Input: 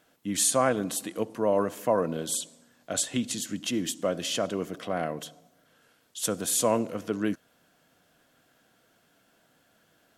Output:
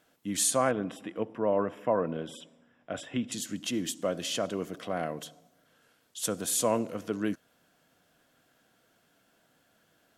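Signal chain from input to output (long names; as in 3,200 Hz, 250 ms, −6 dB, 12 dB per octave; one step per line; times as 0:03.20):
0:00.71–0:03.32: Savitzky-Golay smoothing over 25 samples
level −2.5 dB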